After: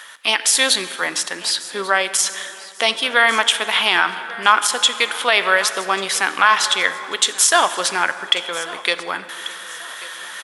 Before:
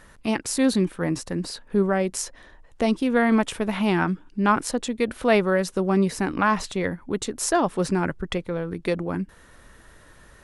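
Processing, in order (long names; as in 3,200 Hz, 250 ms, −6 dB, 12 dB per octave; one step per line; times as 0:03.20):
reversed playback
upward compression, threshold −34 dBFS
reversed playback
high-pass filter 1,200 Hz 12 dB per octave
parametric band 3,300 Hz +11.5 dB 0.23 octaves
on a send: repeating echo 1,140 ms, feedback 37%, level −20 dB
on the sum: dense smooth reverb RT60 2.9 s, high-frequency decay 0.55×, DRR 12 dB
boost into a limiter +15.5 dB
level −1 dB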